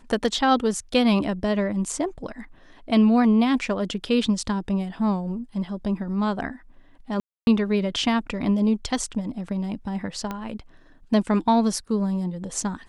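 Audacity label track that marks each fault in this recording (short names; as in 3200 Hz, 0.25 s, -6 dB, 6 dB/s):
7.200000	7.470000	gap 0.271 s
10.310000	10.310000	pop -16 dBFS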